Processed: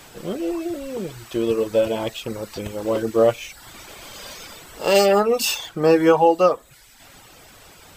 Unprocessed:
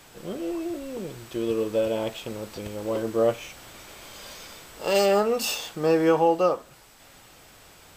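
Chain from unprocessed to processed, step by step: reverb removal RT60 0.78 s; gain +6.5 dB

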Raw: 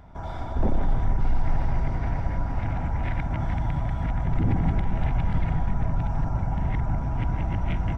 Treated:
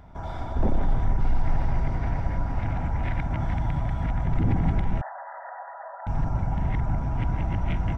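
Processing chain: 5.01–6.07 brick-wall FIR band-pass 520–2000 Hz

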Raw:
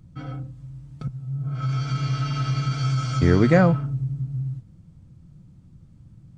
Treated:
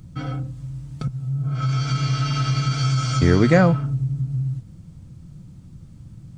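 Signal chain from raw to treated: high shelf 3500 Hz +6.5 dB; in parallel at +1.5 dB: compressor, threshold -32 dBFS, peak gain reduction 19 dB

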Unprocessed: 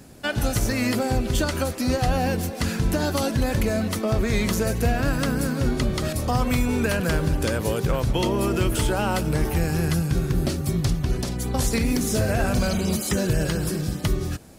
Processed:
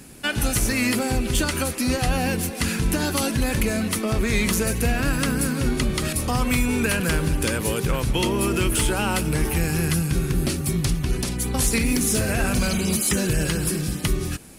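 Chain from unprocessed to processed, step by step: fifteen-band EQ 100 Hz -5 dB, 630 Hz -6 dB, 2500 Hz +5 dB, 10000 Hz +8 dB; in parallel at -10 dB: soft clip -25 dBFS, distortion -9 dB

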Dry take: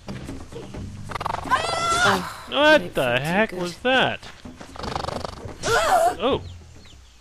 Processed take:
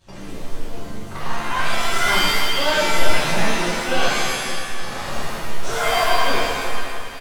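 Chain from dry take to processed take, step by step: sample leveller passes 1; on a send: feedback echo 0.283 s, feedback 56%, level -9 dB; on the sum: shimmer reverb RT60 1.1 s, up +7 st, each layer -2 dB, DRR -8 dB; gain -14 dB

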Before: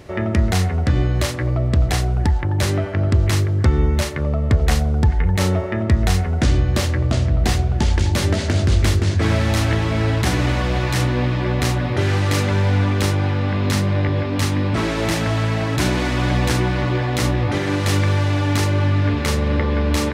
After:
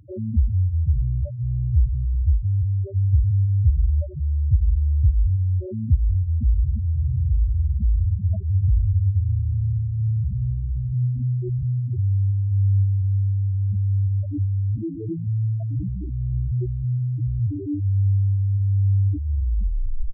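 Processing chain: tape stop at the end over 0.80 s; loudest bins only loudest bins 2

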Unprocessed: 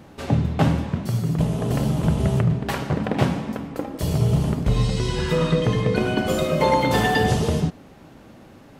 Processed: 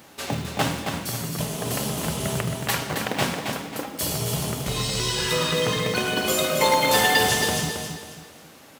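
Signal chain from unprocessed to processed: tilt +3.5 dB/oct; short-mantissa float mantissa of 2-bit; on a send: feedback echo 0.271 s, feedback 34%, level -6 dB

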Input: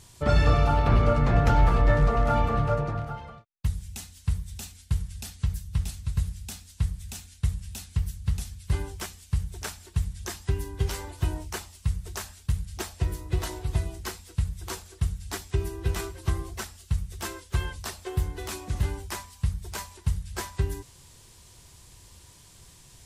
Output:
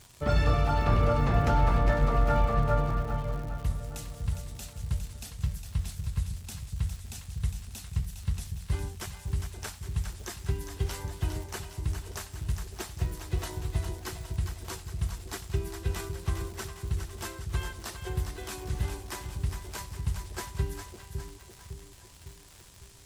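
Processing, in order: split-band echo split 570 Hz, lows 0.555 s, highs 0.408 s, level -7 dB; crackle 200/s -36 dBFS; gain -4 dB

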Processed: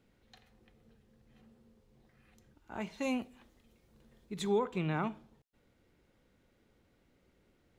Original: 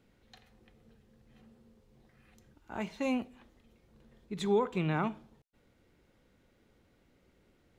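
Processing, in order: 2.97–4.57 high shelf 3900 Hz -> 5900 Hz +7 dB; gain -2.5 dB

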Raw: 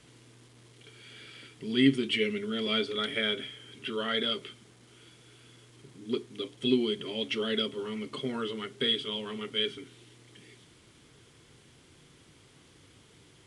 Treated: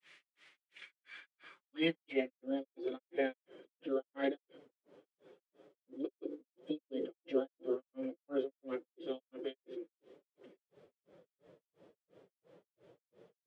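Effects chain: notches 60/120/180/240/300/360/420 Hz; grains 0.239 s, grains 2.9/s, pitch spread up and down by 0 st; formant-preserving pitch shift +3.5 st; band-pass sweep 2100 Hz -> 500 Hz, 0.78–2.64; gain +8.5 dB

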